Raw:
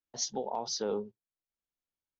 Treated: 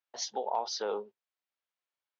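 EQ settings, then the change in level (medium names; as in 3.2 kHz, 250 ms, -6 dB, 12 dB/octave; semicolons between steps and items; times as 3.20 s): band-pass 610–3700 Hz; +5.5 dB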